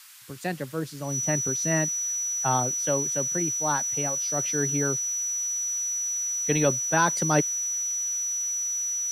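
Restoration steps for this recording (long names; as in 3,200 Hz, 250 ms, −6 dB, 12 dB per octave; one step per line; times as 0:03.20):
notch filter 5,900 Hz, Q 30
noise reduction from a noise print 30 dB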